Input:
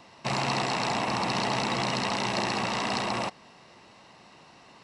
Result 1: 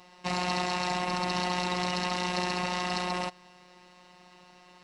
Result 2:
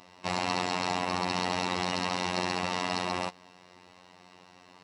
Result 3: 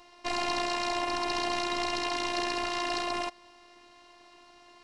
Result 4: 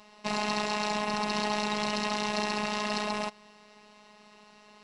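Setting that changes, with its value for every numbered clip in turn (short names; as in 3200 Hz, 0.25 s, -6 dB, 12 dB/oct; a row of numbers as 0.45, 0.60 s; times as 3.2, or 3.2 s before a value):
robotiser, frequency: 180, 90, 350, 210 Hz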